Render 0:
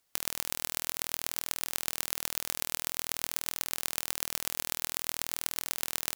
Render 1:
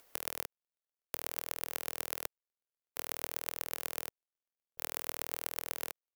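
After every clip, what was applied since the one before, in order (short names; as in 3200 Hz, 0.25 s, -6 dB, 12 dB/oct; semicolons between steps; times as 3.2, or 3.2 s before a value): graphic EQ 125/500/4000/8000 Hz -11/+7/-5/-6 dB; upward compressor, threshold -49 dBFS; step gate "xx...xxx" 66 bpm -60 dB; gain -3 dB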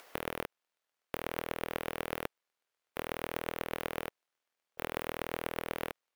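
overdrive pedal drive 21 dB, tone 2300 Hz, clips at -6.5 dBFS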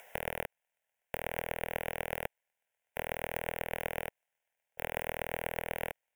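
fixed phaser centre 1200 Hz, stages 6; gain +3.5 dB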